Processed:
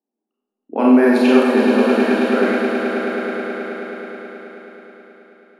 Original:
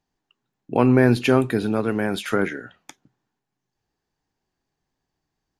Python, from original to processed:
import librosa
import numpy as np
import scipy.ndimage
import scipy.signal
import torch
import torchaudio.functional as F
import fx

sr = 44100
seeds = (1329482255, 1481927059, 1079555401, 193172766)

y = fx.env_lowpass(x, sr, base_hz=490.0, full_db=-13.0)
y = scipy.signal.sosfilt(scipy.signal.ellip(4, 1.0, 40, 220.0, 'highpass', fs=sr, output='sos'), y)
y = fx.echo_swell(y, sr, ms=107, loudest=5, wet_db=-9)
y = fx.rev_schroeder(y, sr, rt60_s=0.92, comb_ms=28, drr_db=-4.0)
y = F.gain(torch.from_numpy(y), -1.5).numpy()